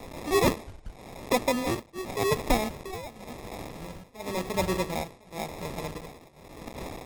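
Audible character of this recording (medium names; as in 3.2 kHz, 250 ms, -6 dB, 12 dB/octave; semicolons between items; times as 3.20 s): a quantiser's noise floor 8-bit, dither triangular; tremolo triangle 0.91 Hz, depth 95%; aliases and images of a low sample rate 1.5 kHz, jitter 0%; MP3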